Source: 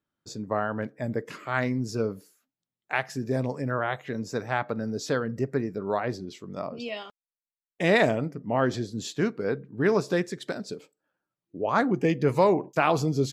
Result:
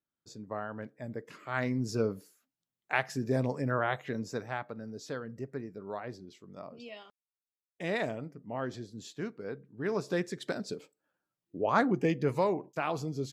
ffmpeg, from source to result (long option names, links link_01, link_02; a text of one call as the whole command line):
ffmpeg -i in.wav -af "volume=7.5dB,afade=type=in:start_time=1.33:duration=0.57:silence=0.398107,afade=type=out:start_time=4.02:duration=0.65:silence=0.334965,afade=type=in:start_time=9.81:duration=0.72:silence=0.334965,afade=type=out:start_time=11.69:duration=0.94:silence=0.398107" out.wav